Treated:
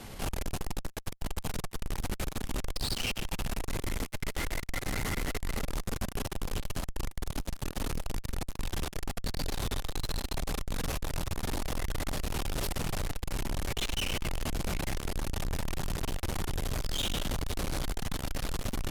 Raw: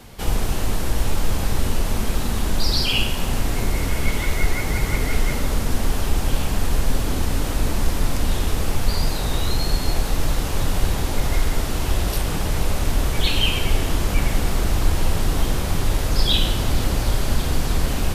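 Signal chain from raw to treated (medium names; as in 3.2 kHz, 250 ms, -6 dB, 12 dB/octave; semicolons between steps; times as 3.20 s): overload inside the chain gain 11.5 dB; speed mistake 25 fps video run at 24 fps; on a send at -13 dB: reverberation RT60 0.60 s, pre-delay 3 ms; on the sum: valve stage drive 29 dB, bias 0.4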